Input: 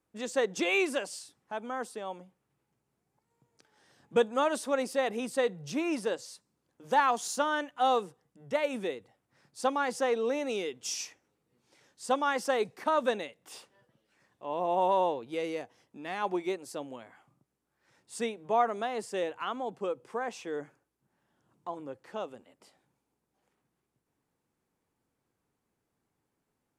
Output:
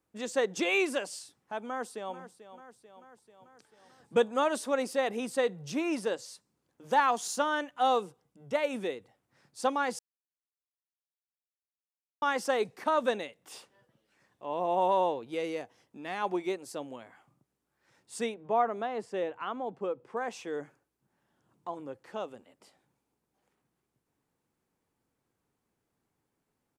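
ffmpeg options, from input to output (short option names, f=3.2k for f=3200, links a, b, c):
-filter_complex "[0:a]asplit=2[a][b];[b]afade=t=in:st=1.64:d=0.01,afade=t=out:st=2.16:d=0.01,aecho=0:1:440|880|1320|1760|2200|2640|3080|3520:0.223872|0.145517|0.094586|0.0614809|0.0399626|0.0259757|0.0168842|0.0109747[c];[a][c]amix=inputs=2:normalize=0,asettb=1/sr,asplit=3[d][e][f];[d]atrim=end=7.974[g];[e]atrim=start=7.97:end=8.54,asetpts=PTS-STARTPTS,afade=t=in:d=0.004:c=qsin,afade=t=out:st=0.566:d=0.004:c=qsin,bandreject=f=1.8k:w=5.6[h];[f]atrim=start=8.536[i];[g][h]acrossfade=d=0.004:c1=hsin:c2=qsin[j];[j][i]acrossfade=d=0.004:c1=qsin:c2=hsin,asettb=1/sr,asplit=3[k][l][m];[k]atrim=end=18.344[n];[l]atrim=start=18.34:end=20.17,asetpts=PTS-STARTPTS,afade=t=in:d=0.004:c=qsin,afade=t=out:st=1.826:d=0.004:c=qsin,lowpass=f=1.9k:p=1[o];[m]atrim=start=20.166[p];[n][o]acrossfade=d=0.004:c1=hsin:c2=qsin[q];[q][p]acrossfade=d=0.004:c1=qsin:c2=hsin,asplit=3[r][s][t];[r]atrim=end=9.99,asetpts=PTS-STARTPTS,afade=t=out:st=9.986:d=0.004:c=hsin[u];[s]atrim=start=9.99:end=12.22,asetpts=PTS-STARTPTS,volume=0[v];[t]atrim=start=12.22,asetpts=PTS-STARTPTS,afade=t=in:d=0.004:c=hsin[w];[u][v][w]concat=n=3:v=0:a=1"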